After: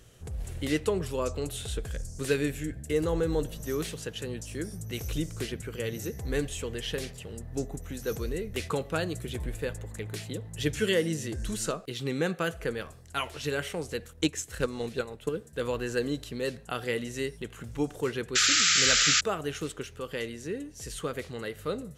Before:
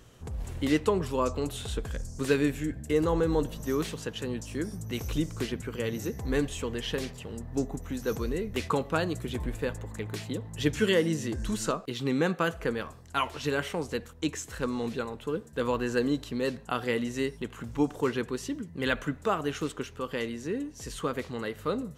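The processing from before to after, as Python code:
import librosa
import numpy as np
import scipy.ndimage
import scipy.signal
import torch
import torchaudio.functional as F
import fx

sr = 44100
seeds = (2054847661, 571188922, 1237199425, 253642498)

y = fx.graphic_eq_15(x, sr, hz=(250, 1000, 10000), db=(-6, -8, 5))
y = fx.transient(y, sr, attack_db=7, sustain_db=-4, at=(14.15, 15.29))
y = fx.spec_paint(y, sr, seeds[0], shape='noise', start_s=18.35, length_s=0.86, low_hz=1200.0, high_hz=7700.0, level_db=-23.0)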